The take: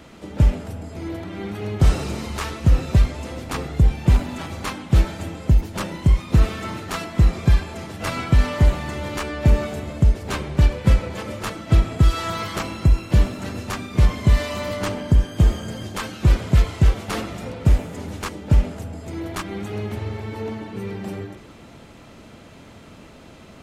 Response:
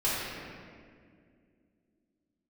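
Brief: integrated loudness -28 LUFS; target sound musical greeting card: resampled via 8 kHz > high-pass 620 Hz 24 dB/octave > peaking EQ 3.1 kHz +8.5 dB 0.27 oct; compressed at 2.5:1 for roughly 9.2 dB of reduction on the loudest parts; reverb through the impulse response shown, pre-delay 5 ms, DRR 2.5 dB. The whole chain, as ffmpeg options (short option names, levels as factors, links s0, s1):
-filter_complex "[0:a]acompressor=threshold=0.0631:ratio=2.5,asplit=2[s0][s1];[1:a]atrim=start_sample=2205,adelay=5[s2];[s1][s2]afir=irnorm=-1:irlink=0,volume=0.211[s3];[s0][s3]amix=inputs=2:normalize=0,aresample=8000,aresample=44100,highpass=f=620:w=0.5412,highpass=f=620:w=1.3066,equalizer=f=3100:t=o:w=0.27:g=8.5,volume=1.88"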